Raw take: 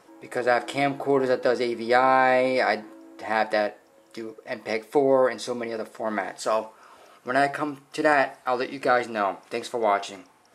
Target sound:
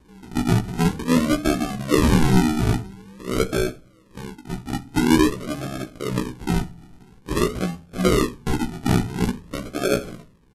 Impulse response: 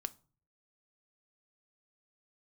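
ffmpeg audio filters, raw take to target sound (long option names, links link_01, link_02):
-filter_complex "[0:a]acrusher=samples=38:mix=1:aa=0.000001:lfo=1:lforange=22.8:lforate=0.48,asetrate=26222,aresample=44100,atempo=1.68179,asplit=2[link_01][link_02];[1:a]atrim=start_sample=2205,lowshelf=frequency=210:gain=10.5,adelay=16[link_03];[link_02][link_03]afir=irnorm=-1:irlink=0,volume=-4dB[link_04];[link_01][link_04]amix=inputs=2:normalize=0"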